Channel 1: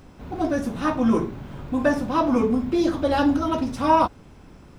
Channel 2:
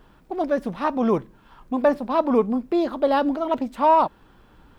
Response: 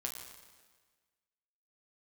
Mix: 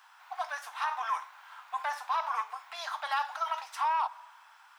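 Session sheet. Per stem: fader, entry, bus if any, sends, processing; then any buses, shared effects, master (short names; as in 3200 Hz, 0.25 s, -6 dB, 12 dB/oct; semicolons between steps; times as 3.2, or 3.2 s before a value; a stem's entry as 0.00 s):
-5.5 dB, 0.00 s, no send, limiter -15 dBFS, peak gain reduction 8 dB
-2.0 dB, 0.00 s, polarity flipped, send -20 dB, soft clip -11.5 dBFS, distortion -19 dB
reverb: on, RT60 1.5 s, pre-delay 7 ms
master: steep high-pass 820 Hz 48 dB/oct; bell 1500 Hz +3 dB 0.77 oct; limiter -21.5 dBFS, peak gain reduction 9 dB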